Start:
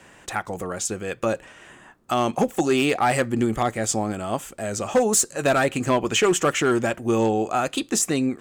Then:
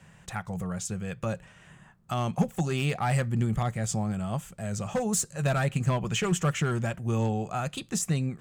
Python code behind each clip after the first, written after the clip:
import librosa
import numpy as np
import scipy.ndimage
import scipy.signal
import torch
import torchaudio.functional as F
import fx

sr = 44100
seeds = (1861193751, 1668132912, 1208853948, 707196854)

y = fx.low_shelf_res(x, sr, hz=220.0, db=9.0, q=3.0)
y = F.gain(torch.from_numpy(y), -8.5).numpy()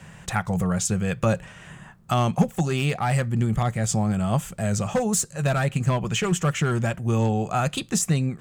y = fx.rider(x, sr, range_db=4, speed_s=0.5)
y = F.gain(torch.from_numpy(y), 5.5).numpy()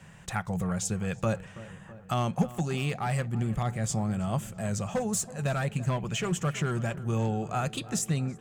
y = fx.echo_filtered(x, sr, ms=328, feedback_pct=69, hz=2400.0, wet_db=-17)
y = F.gain(torch.from_numpy(y), -6.5).numpy()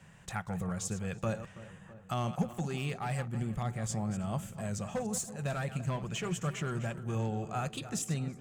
y = fx.reverse_delay(x, sr, ms=149, wet_db=-12)
y = F.gain(torch.from_numpy(y), -5.5).numpy()